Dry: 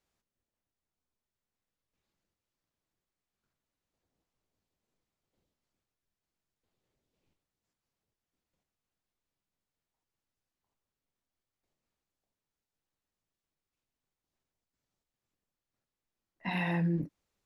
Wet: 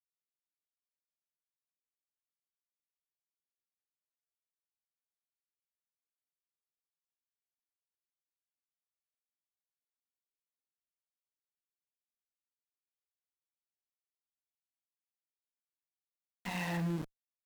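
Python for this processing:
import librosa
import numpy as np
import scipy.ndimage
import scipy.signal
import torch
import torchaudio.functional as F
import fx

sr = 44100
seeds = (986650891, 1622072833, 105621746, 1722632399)

y = np.where(np.abs(x) >= 10.0 ** (-36.5 / 20.0), x, 0.0)
y = fx.cheby_harmonics(y, sr, harmonics=(8,), levels_db=(-22,), full_scale_db=-20.0)
y = F.gain(torch.from_numpy(y), -5.0).numpy()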